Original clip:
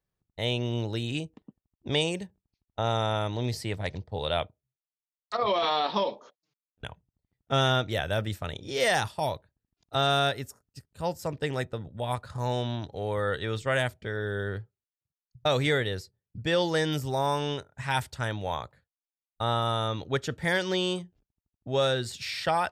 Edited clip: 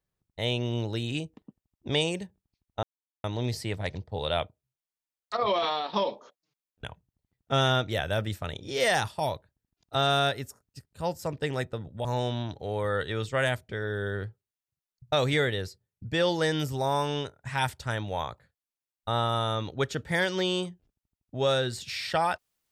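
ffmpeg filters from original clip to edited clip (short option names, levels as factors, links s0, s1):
-filter_complex "[0:a]asplit=5[s0][s1][s2][s3][s4];[s0]atrim=end=2.83,asetpts=PTS-STARTPTS,afade=t=out:st=2.826:d=0.004:c=hsin[s5];[s1]atrim=start=2.83:end=3.24,asetpts=PTS-STARTPTS,volume=0[s6];[s2]atrim=start=3.24:end=5.93,asetpts=PTS-STARTPTS,afade=t=in:d=0.004:c=hsin,afade=t=out:st=2.32:d=0.37:silence=0.375837[s7];[s3]atrim=start=5.93:end=12.052,asetpts=PTS-STARTPTS,afade=t=in:d=0.004:c=hsin:silence=0.375837[s8];[s4]atrim=start=12.378[s9];[s5][s6][s7][s8]concat=n=4:v=0:a=1[s10];[s10][s9]acrossfade=d=0.004:c1=hsin:c2=hsin"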